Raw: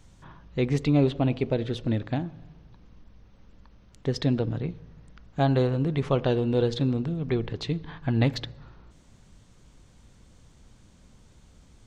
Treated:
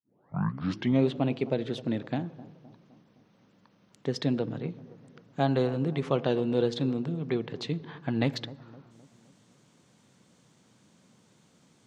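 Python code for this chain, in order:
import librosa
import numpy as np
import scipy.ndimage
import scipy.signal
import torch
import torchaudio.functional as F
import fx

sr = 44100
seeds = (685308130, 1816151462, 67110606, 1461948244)

y = fx.tape_start_head(x, sr, length_s=1.05)
y = scipy.signal.sosfilt(scipy.signal.butter(4, 140.0, 'highpass', fs=sr, output='sos'), y)
y = fx.echo_bbd(y, sr, ms=258, stages=2048, feedback_pct=50, wet_db=-18.0)
y = y * librosa.db_to_amplitude(-2.0)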